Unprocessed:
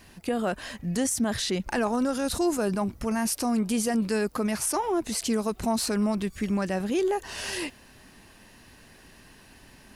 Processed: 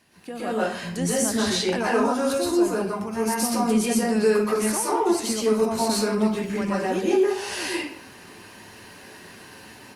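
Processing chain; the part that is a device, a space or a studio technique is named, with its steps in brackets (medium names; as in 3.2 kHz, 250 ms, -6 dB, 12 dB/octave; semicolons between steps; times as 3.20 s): far-field microphone of a smart speaker (reverberation RT60 0.60 s, pre-delay 114 ms, DRR -7.5 dB; high-pass 140 Hz 12 dB/octave; level rider gain up to 10.5 dB; trim -8.5 dB; Opus 48 kbps 48 kHz)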